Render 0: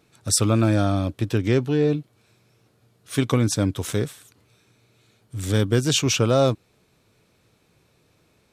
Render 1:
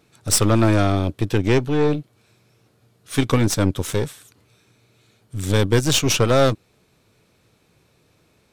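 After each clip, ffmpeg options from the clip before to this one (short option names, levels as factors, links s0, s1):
-af "aeval=exprs='0.562*(cos(1*acos(clip(val(0)/0.562,-1,1)))-cos(1*PI/2))+0.0562*(cos(8*acos(clip(val(0)/0.562,-1,1)))-cos(8*PI/2))':c=same,volume=1.26"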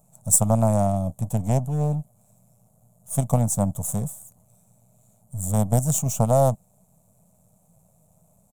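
-af "aeval=exprs='if(lt(val(0),0),0.251*val(0),val(0))':c=same,firequalizer=gain_entry='entry(110,0);entry(180,8);entry(330,-21);entry(630,6);entry(1600,-23);entry(4900,-20);entry(7100,7)':delay=0.05:min_phase=1,volume=1.33"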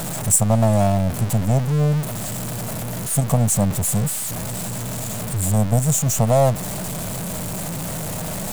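-filter_complex "[0:a]aeval=exprs='val(0)+0.5*0.0631*sgn(val(0))':c=same,asplit=2[s0][s1];[s1]alimiter=limit=0.266:level=0:latency=1:release=165,volume=0.708[s2];[s0][s2]amix=inputs=2:normalize=0,volume=0.794"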